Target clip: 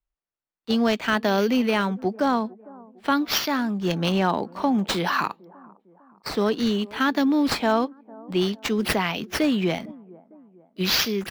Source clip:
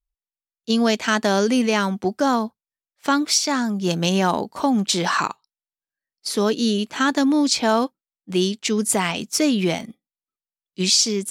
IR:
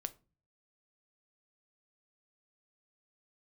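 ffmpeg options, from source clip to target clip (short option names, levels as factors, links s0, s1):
-filter_complex "[0:a]acrossover=split=150|1200|4900[s0][s1][s2][s3];[s1]aecho=1:1:454|908|1362:0.0891|0.041|0.0189[s4];[s3]acrusher=samples=9:mix=1:aa=0.000001:lfo=1:lforange=9:lforate=0.52[s5];[s0][s4][s2][s5]amix=inputs=4:normalize=0,volume=0.75"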